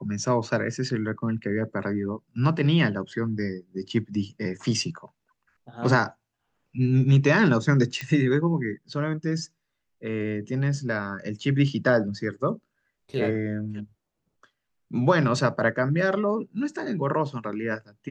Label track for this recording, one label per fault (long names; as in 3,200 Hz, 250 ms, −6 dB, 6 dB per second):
8.010000	8.010000	click −17 dBFS